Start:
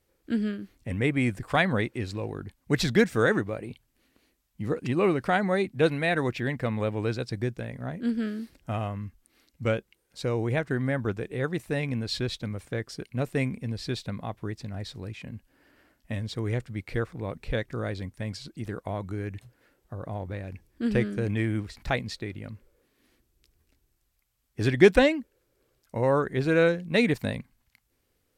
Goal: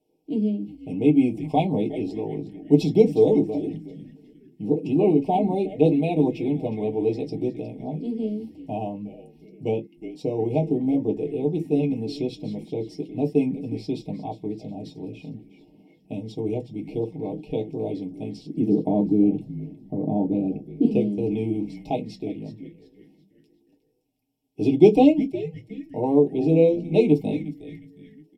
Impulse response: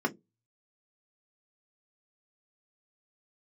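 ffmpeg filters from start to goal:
-filter_complex "[0:a]asettb=1/sr,asplit=3[a][b][c];[a]atrim=end=18.484[d];[b]atrim=start=18.48:end=20.85,asetpts=PTS-STARTPTS,afade=t=in:d=0.004:c=qsin,afade=t=out:st=2.366:d=0.004:c=qsin,equalizer=f=230:w=0.68:g=13[e];[c]atrim=start=20.846[f];[d][e]acrossfade=d=0.004:c1=hsin:c2=qsin[g];[g][f]acrossfade=d=0.004:c1=qsin:c2=hsin,asuperstop=centerf=1500:order=12:qfactor=1,aecho=1:1:6.5:0.56,asplit=5[h][i][j][k][l];[i]adelay=361,afreqshift=-150,volume=-13dB[m];[j]adelay=722,afreqshift=-300,volume=-21.4dB[n];[k]adelay=1083,afreqshift=-450,volume=-29.8dB[o];[l]adelay=1444,afreqshift=-600,volume=-38.2dB[p];[h][m][n][o][p]amix=inputs=5:normalize=0[q];[1:a]atrim=start_sample=2205,atrim=end_sample=3528[r];[q][r]afir=irnorm=-1:irlink=0,volume=-8dB"

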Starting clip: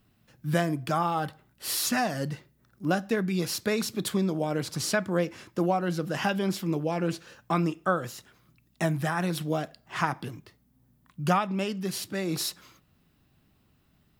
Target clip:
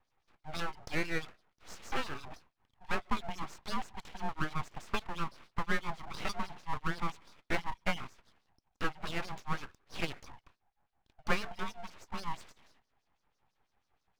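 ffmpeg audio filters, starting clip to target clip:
-filter_complex "[0:a]acrossover=split=1500[a][b];[a]aeval=exprs='val(0)*(1-1/2+1/2*cos(2*PI*6.1*n/s))':c=same[c];[b]aeval=exprs='val(0)*(1-1/2-1/2*cos(2*PI*6.1*n/s))':c=same[d];[c][d]amix=inputs=2:normalize=0,highpass=f=210:t=q:w=0.5412,highpass=f=210:t=q:w=1.307,lowpass=f=3.2k:t=q:w=0.5176,lowpass=f=3.2k:t=q:w=0.7071,lowpass=f=3.2k:t=q:w=1.932,afreqshift=160,aeval=exprs='abs(val(0))':c=same"

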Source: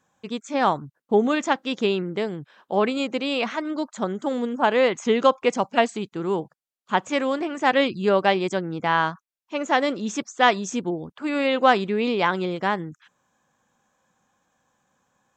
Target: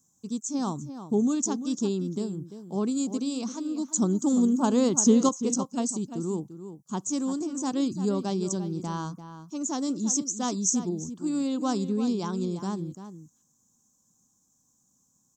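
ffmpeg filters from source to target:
-filter_complex "[0:a]firequalizer=gain_entry='entry(270,0);entry(550,-17);entry(1100,-13);entry(1900,-30);entry(5800,10)':delay=0.05:min_phase=1,asettb=1/sr,asplit=3[a][b][c];[a]atrim=end=3.884[d];[b]atrim=start=3.88:end=5.29,asetpts=PTS-STARTPTS,afade=t=in:d=0.004:c=qsin,afade=t=out:st=1.406:d=0.004:c=qsin,acontrast=56[e];[c]atrim=start=5.286[f];[d][e]acrossfade=d=0.004:c1=hsin:c2=qsin[g];[g][f]acrossfade=d=0.004:c1=qsin:c2=hsin,asplit=2[h][i];[i]adelay=344,volume=-11dB,highshelf=f=4k:g=-7.74[j];[h][j]amix=inputs=2:normalize=0"

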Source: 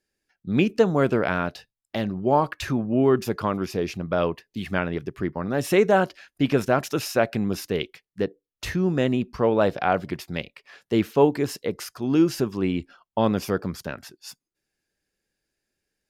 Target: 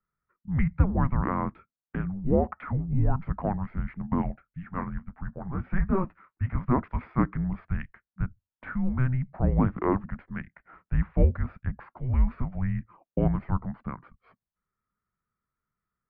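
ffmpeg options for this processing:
-filter_complex "[0:a]asplit=3[a][b][c];[a]afade=t=out:st=4.2:d=0.02[d];[b]flanger=delay=7.4:depth=4.6:regen=-37:speed=1.5:shape=triangular,afade=t=in:st=4.2:d=0.02,afade=t=out:st=6.61:d=0.02[e];[c]afade=t=in:st=6.61:d=0.02[f];[d][e][f]amix=inputs=3:normalize=0,highpass=f=160:t=q:w=0.5412,highpass=f=160:t=q:w=1.307,lowpass=f=2.2k:t=q:w=0.5176,lowpass=f=2.2k:t=q:w=0.7071,lowpass=f=2.2k:t=q:w=1.932,afreqshift=-380,volume=-2.5dB"

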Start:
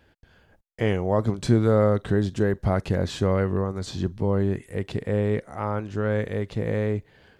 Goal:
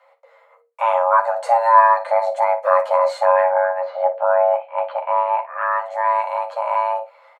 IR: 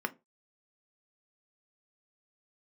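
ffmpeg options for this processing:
-filter_complex "[0:a]asettb=1/sr,asplit=3[a][b][c];[a]atrim=end=3.444[d];[b]atrim=start=3.44:end=5.71,asetpts=PTS-STARTPTS,afade=t=in:d=0.004:c=qsin,afade=t=out:st=2.266:d=0.004:c=qsin,lowpass=f=2.8k:w=0.5412,lowpass=f=2.8k:w=1.3066[e];[c]atrim=start=5.706[f];[d][e]acrossfade=d=0.004:c1=hsin:c2=qsin[g];[g][f]acrossfade=d=0.004:c1=qsin:c2=hsin,afreqshift=460,aecho=1:1:11|58:0.596|0.224[h];[1:a]atrim=start_sample=2205,asetrate=35280,aresample=44100[i];[h][i]afir=irnorm=-1:irlink=0,volume=-2.5dB"

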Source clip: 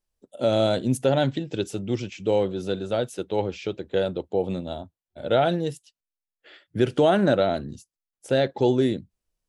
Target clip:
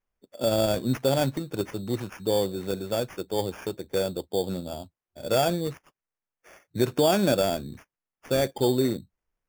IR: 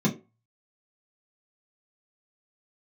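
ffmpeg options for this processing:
-af "acrusher=samples=11:mix=1:aa=0.000001,volume=-2.5dB"

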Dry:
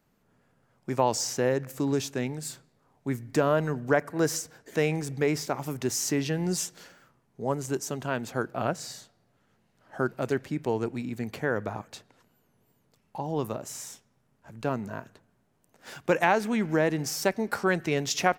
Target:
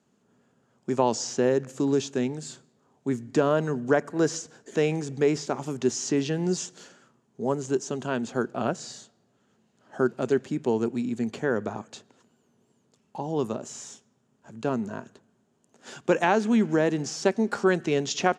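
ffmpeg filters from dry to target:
-filter_complex "[0:a]highpass=110,equalizer=f=230:t=q:w=4:g=7,equalizer=f=390:t=q:w=4:g=6,equalizer=f=2.1k:t=q:w=4:g=-5,equalizer=f=3.2k:t=q:w=4:g=3,equalizer=f=6.9k:t=q:w=4:g=8,lowpass=f=9.3k:w=0.5412,lowpass=f=9.3k:w=1.3066,acrossover=split=5900[a][b];[b]acompressor=threshold=-48dB:ratio=4:attack=1:release=60[c];[a][c]amix=inputs=2:normalize=0"

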